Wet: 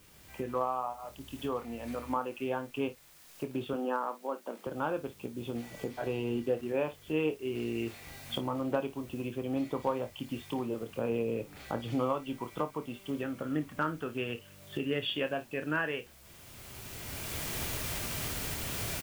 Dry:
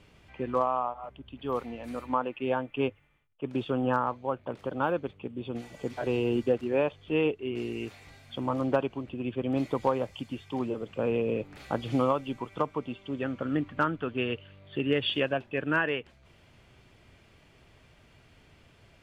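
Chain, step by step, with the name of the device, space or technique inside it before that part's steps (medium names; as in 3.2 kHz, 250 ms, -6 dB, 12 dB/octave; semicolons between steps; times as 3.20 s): cheap recorder with automatic gain (white noise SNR 26 dB; recorder AGC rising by 16 dB/s); 3.73–4.67 s: elliptic high-pass 200 Hz, stop band 40 dB; early reflections 26 ms -9.5 dB, 55 ms -16.5 dB; trim -5.5 dB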